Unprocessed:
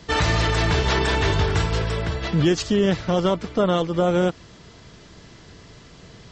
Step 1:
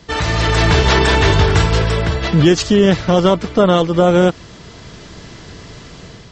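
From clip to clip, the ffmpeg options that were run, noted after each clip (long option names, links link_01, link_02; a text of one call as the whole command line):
ffmpeg -i in.wav -af "dynaudnorm=framelen=180:gausssize=5:maxgain=9dB,volume=1dB" out.wav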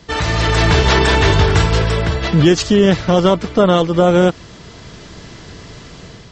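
ffmpeg -i in.wav -af anull out.wav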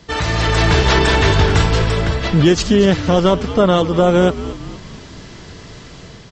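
ffmpeg -i in.wav -filter_complex "[0:a]asplit=6[link_01][link_02][link_03][link_04][link_05][link_06];[link_02]adelay=230,afreqshift=-110,volume=-13.5dB[link_07];[link_03]adelay=460,afreqshift=-220,volume=-19.2dB[link_08];[link_04]adelay=690,afreqshift=-330,volume=-24.9dB[link_09];[link_05]adelay=920,afreqshift=-440,volume=-30.5dB[link_10];[link_06]adelay=1150,afreqshift=-550,volume=-36.2dB[link_11];[link_01][link_07][link_08][link_09][link_10][link_11]amix=inputs=6:normalize=0,volume=-1dB" out.wav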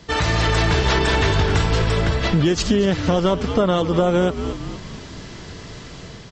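ffmpeg -i in.wav -af "acompressor=threshold=-14dB:ratio=6" out.wav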